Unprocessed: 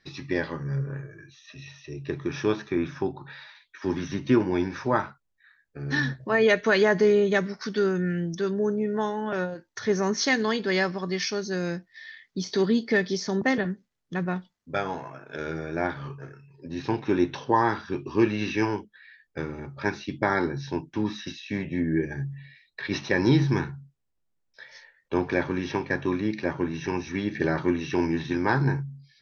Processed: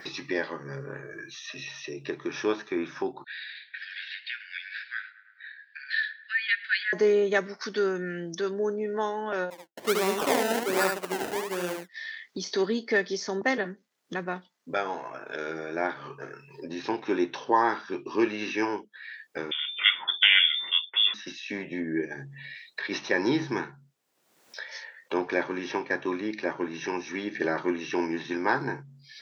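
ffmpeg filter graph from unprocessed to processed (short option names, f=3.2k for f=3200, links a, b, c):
-filter_complex "[0:a]asettb=1/sr,asplit=3[a][b][c];[a]atrim=end=3.244[d];[b]atrim=start=3.24:end=6.93,asetpts=PTS-STARTPTS,afade=t=in:d=0.004:c=qsin,afade=t=out:st=3.686:d=0.004:c=qsin,asuperpass=centerf=2700:order=20:qfactor=0.83,asplit=2[e][f];[f]adelay=106,lowpass=f=2.1k:p=1,volume=-17dB,asplit=2[g][h];[h]adelay=106,lowpass=f=2.1k:p=1,volume=0.52,asplit=2[i][j];[j]adelay=106,lowpass=f=2.1k:p=1,volume=0.52,asplit=2[k][l];[l]adelay=106,lowpass=f=2.1k:p=1,volume=0.52,asplit=2[m][n];[n]adelay=106,lowpass=f=2.1k:p=1,volume=0.52[o];[e][g][i][k][m][o]amix=inputs=6:normalize=0,atrim=end_sample=162729[p];[c]atrim=start=6.926[q];[d][p]acrossfade=d=0.004:c1=hsin:c2=qsin[r];[r][q]acrossfade=d=0.004:c1=qsin:c2=hsin,asettb=1/sr,asplit=3[s][t][u];[s]atrim=end=9.504[v];[t]atrim=start=9.5:end=11.89,asetpts=PTS-STARTPTS,afade=t=in:d=0.004:c=qsin,afade=t=out:st=2.386:d=0.004:c=qsin,agate=range=-33dB:threshold=-29dB:ratio=3:release=100:detection=peak,acrusher=samples=27:mix=1:aa=0.000001:lfo=1:lforange=27:lforate=1.3,aecho=1:1:73:0.631,atrim=end_sample=105399[w];[u]atrim=start=11.886[x];[v][w]acrossfade=d=0.004:c1=hsin:c2=qsin[y];[y][x]acrossfade=d=0.004:c1=qsin:c2=hsin,asettb=1/sr,asplit=3[z][aa][ab];[z]atrim=end=19.514[ac];[aa]atrim=start=19.51:end=21.14,asetpts=PTS-STARTPTS,afade=t=in:d=0.004:c=qsin,afade=t=out:st=1.626:d=0.004:c=qsin,highpass=130,acontrast=89,lowpass=f=3.1k:t=q:w=0.5098,lowpass=f=3.1k:t=q:w=0.6013,lowpass=f=3.1k:t=q:w=0.9,lowpass=f=3.1k:t=q:w=2.563,afreqshift=-3700[ad];[ab]atrim=start=21.136[ae];[ac][ad]acrossfade=d=0.004:c1=hsin:c2=qsin[af];[af][ae]acrossfade=d=0.004:c1=qsin:c2=hsin,highpass=340,adynamicequalizer=threshold=0.00562:dfrequency=4100:dqfactor=1.3:tfrequency=4100:tqfactor=1.3:attack=5:release=100:ratio=0.375:range=2:mode=cutabove:tftype=bell,acompressor=mode=upward:threshold=-30dB:ratio=2.5"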